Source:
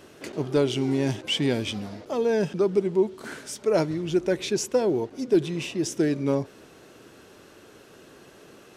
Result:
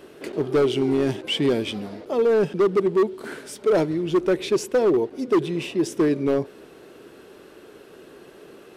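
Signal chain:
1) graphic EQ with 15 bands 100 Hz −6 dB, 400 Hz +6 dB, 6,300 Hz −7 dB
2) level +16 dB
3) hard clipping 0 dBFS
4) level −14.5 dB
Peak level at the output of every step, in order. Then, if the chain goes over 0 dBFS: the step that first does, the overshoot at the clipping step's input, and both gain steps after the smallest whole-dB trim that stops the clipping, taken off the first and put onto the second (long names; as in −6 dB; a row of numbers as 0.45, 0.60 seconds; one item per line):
−6.0, +10.0, 0.0, −14.5 dBFS
step 2, 10.0 dB
step 2 +6 dB, step 4 −4.5 dB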